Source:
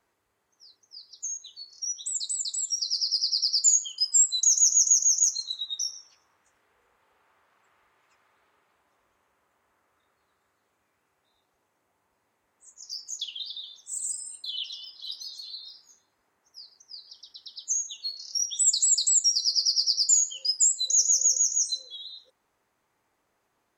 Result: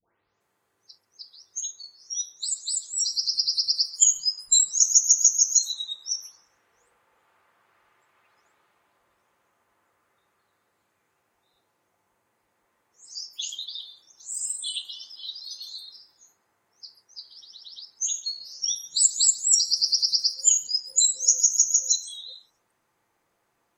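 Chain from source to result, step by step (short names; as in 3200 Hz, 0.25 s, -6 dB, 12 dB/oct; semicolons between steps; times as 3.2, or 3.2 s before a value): spectral delay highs late, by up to 0.404 s; gain +2.5 dB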